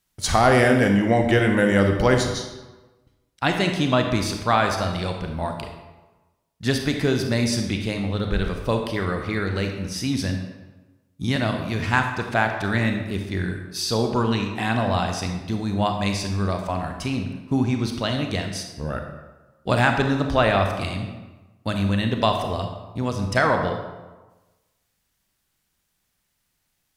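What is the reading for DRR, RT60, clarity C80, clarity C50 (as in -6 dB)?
4.0 dB, 1.2 s, 7.5 dB, 5.5 dB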